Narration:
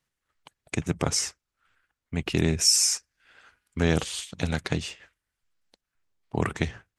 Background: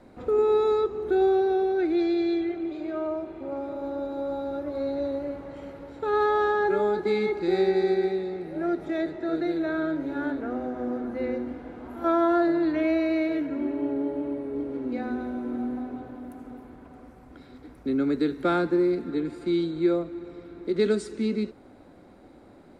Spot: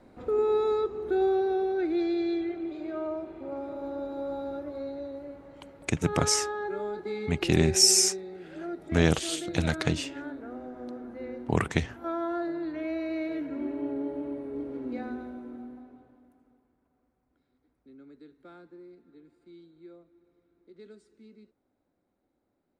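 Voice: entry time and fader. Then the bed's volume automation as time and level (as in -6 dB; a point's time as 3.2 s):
5.15 s, +0.5 dB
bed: 4.48 s -3.5 dB
5.07 s -9.5 dB
12.78 s -9.5 dB
13.57 s -4.5 dB
15 s -4.5 dB
16.74 s -26.5 dB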